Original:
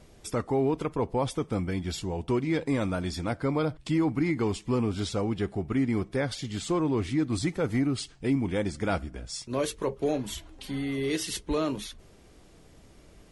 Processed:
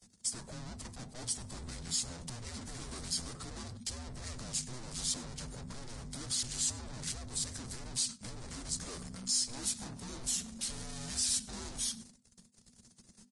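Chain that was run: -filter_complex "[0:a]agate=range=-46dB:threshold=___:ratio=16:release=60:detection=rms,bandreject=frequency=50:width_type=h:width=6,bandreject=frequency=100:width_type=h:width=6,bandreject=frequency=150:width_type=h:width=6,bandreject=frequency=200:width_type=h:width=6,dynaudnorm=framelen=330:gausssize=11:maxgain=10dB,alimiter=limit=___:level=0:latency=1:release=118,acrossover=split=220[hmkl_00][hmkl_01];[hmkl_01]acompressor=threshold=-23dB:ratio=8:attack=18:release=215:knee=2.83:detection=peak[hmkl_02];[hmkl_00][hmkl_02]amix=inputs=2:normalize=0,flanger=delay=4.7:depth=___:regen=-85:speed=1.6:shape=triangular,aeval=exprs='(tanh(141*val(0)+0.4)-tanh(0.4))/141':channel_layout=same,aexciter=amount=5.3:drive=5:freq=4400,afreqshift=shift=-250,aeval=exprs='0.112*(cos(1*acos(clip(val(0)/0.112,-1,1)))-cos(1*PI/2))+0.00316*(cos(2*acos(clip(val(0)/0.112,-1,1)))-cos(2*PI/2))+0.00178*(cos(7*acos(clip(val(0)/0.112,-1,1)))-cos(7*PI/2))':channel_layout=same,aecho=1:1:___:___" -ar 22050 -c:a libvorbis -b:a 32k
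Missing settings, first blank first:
-52dB, -14dB, 1.2, 98, 0.0841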